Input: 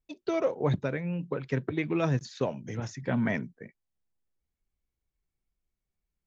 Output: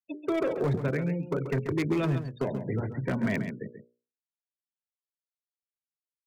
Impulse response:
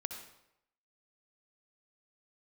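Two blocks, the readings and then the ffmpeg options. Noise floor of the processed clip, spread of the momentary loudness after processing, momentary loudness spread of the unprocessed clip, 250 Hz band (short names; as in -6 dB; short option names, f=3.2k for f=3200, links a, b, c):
under -85 dBFS, 5 LU, 8 LU, +1.5 dB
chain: -filter_complex "[0:a]acrossover=split=120|350|1400[a][b][c][d];[c]asoftclip=type=tanh:threshold=-34.5dB[e];[a][b][e][d]amix=inputs=4:normalize=0,adynamicsmooth=sensitivity=2:basefreq=1.7k,afftfilt=real='re*gte(hypot(re,im),0.00562)':imag='im*gte(hypot(re,im),0.00562)':win_size=1024:overlap=0.75,acompressor=threshold=-33dB:ratio=3,adynamicequalizer=threshold=0.00251:dfrequency=390:dqfactor=4.7:tfrequency=390:tqfactor=4.7:attack=5:release=100:ratio=0.375:range=2.5:mode=boostabove:tftype=bell,bandreject=f=60:t=h:w=6,bandreject=f=120:t=h:w=6,bandreject=f=180:t=h:w=6,bandreject=f=240:t=h:w=6,bandreject=f=300:t=h:w=6,bandreject=f=360:t=h:w=6,bandreject=f=420:t=h:w=6,bandreject=f=480:t=h:w=6,bandreject=f=540:t=h:w=6,bandreject=f=600:t=h:w=6,volume=29.5dB,asoftclip=hard,volume=-29.5dB,bass=f=250:g=0,treble=f=4k:g=11,bandreject=f=800:w=18,aecho=1:1:135:0.335,volume=7.5dB"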